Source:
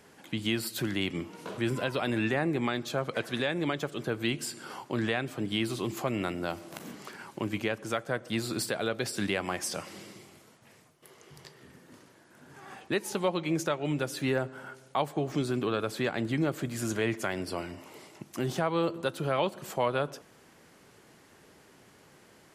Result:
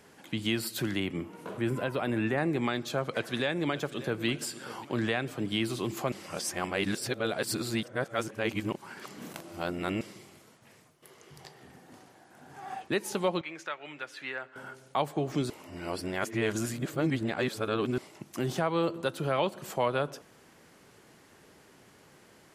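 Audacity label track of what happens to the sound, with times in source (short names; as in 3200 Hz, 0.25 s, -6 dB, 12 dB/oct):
1.000000	2.380000	bell 4900 Hz -9 dB 1.7 oct
3.130000	4.250000	echo throw 0.59 s, feedback 45%, level -16 dB
6.120000	10.010000	reverse
11.400000	12.820000	bell 760 Hz +14.5 dB 0.23 oct
13.410000	14.560000	band-pass 1900 Hz, Q 1.2
15.500000	17.980000	reverse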